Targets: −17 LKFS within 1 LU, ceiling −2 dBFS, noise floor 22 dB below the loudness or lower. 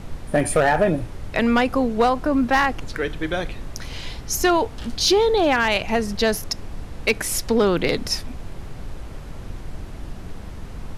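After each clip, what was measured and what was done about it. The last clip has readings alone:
share of clipped samples 0.3%; peaks flattened at −10.5 dBFS; background noise floor −36 dBFS; target noise floor −43 dBFS; integrated loudness −21.0 LKFS; sample peak −10.5 dBFS; target loudness −17.0 LKFS
→ clipped peaks rebuilt −10.5 dBFS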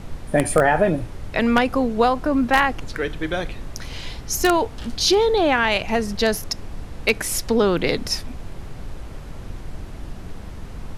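share of clipped samples 0.0%; background noise floor −36 dBFS; target noise floor −43 dBFS
→ noise reduction from a noise print 7 dB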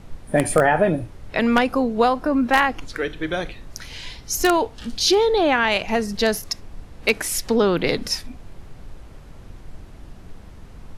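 background noise floor −42 dBFS; target noise floor −43 dBFS
→ noise reduction from a noise print 6 dB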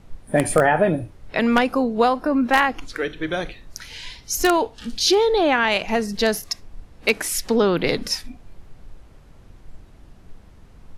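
background noise floor −48 dBFS; integrated loudness −20.5 LKFS; sample peak −1.5 dBFS; target loudness −17.0 LKFS
→ level +3.5 dB
brickwall limiter −2 dBFS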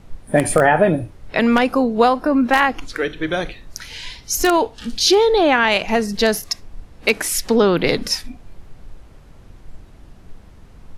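integrated loudness −17.5 LKFS; sample peak −2.0 dBFS; background noise floor −44 dBFS

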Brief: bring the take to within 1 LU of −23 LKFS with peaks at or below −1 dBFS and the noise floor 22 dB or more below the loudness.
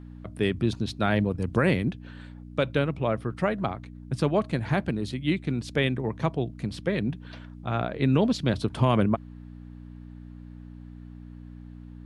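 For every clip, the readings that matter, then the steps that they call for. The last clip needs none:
mains hum 60 Hz; hum harmonics up to 300 Hz; level of the hum −43 dBFS; integrated loudness −27.0 LKFS; sample peak −10.0 dBFS; target loudness −23.0 LKFS
→ hum removal 60 Hz, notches 5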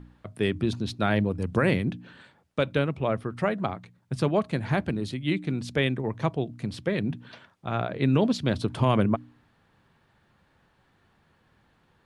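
mains hum none found; integrated loudness −27.5 LKFS; sample peak −10.0 dBFS; target loudness −23.0 LKFS
→ level +4.5 dB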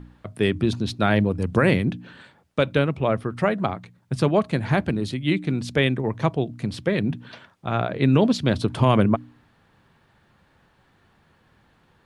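integrated loudness −23.0 LKFS; sample peak −5.5 dBFS; background noise floor −61 dBFS

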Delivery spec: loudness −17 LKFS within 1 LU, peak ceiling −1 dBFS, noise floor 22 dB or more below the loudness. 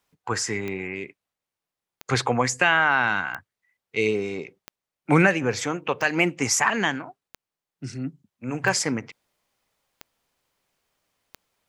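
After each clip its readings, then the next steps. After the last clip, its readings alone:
number of clicks 9; integrated loudness −23.5 LKFS; sample peak −3.5 dBFS; target loudness −17.0 LKFS
→ click removal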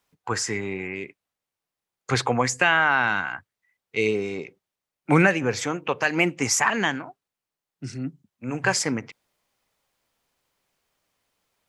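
number of clicks 0; integrated loudness −23.5 LKFS; sample peak −3.5 dBFS; target loudness −17.0 LKFS
→ level +6.5 dB
brickwall limiter −1 dBFS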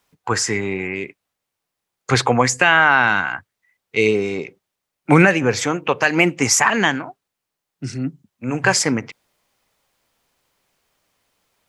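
integrated loudness −17.5 LKFS; sample peak −1.0 dBFS; background noise floor −81 dBFS

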